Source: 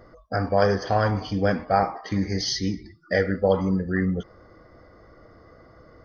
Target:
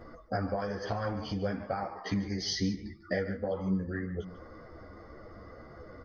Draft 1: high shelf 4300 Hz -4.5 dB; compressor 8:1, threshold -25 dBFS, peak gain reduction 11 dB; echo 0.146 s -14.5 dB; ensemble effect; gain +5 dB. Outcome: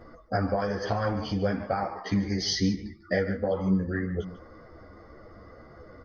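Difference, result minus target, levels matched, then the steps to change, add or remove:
compressor: peak gain reduction -5.5 dB
change: compressor 8:1, threshold -31.5 dBFS, peak gain reduction 16.5 dB

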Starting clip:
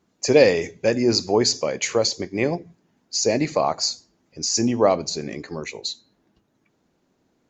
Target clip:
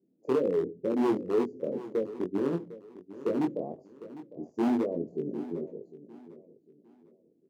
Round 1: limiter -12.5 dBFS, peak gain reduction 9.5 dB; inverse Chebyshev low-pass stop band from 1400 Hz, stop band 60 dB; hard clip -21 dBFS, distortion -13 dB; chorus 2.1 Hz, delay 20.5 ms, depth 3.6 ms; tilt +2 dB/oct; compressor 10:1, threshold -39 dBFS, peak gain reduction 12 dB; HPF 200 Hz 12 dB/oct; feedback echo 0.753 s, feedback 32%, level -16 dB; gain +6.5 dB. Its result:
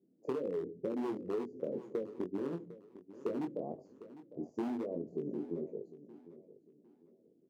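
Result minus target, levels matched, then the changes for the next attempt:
compressor: peak gain reduction +12 dB
remove: compressor 10:1, threshold -39 dBFS, peak gain reduction 12 dB

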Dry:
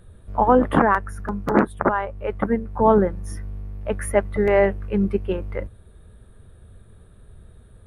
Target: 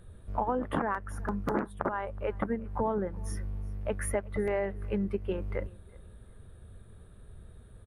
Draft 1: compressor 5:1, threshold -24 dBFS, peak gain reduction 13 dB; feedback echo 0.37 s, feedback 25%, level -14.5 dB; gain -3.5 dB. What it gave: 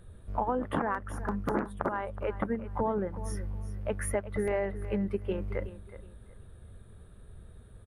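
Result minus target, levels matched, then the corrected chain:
echo-to-direct +9.5 dB
compressor 5:1, threshold -24 dBFS, peak gain reduction 13 dB; feedback echo 0.37 s, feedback 25%, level -24 dB; gain -3.5 dB

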